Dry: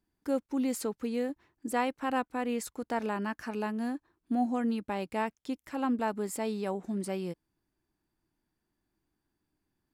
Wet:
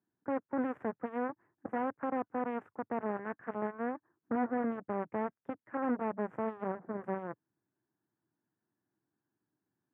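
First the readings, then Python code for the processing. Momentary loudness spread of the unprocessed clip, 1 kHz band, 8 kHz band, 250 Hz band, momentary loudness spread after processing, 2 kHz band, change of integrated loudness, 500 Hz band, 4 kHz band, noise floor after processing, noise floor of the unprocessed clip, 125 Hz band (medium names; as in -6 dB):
6 LU, -2.5 dB, under -35 dB, -5.0 dB, 6 LU, -4.5 dB, -3.5 dB, -2.0 dB, under -20 dB, under -85 dBFS, -84 dBFS, -5.0 dB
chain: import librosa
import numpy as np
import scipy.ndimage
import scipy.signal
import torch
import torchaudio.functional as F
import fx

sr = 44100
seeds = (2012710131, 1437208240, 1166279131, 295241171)

y = fx.clip_asym(x, sr, top_db=-36.0, bottom_db=-22.5)
y = fx.cheby_harmonics(y, sr, harmonics=(7,), levels_db=(-13,), full_scale_db=-22.5)
y = scipy.signal.sosfilt(scipy.signal.ellip(3, 1.0, 40, [110.0, 1700.0], 'bandpass', fs=sr, output='sos'), y)
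y = y * librosa.db_to_amplitude(1.5)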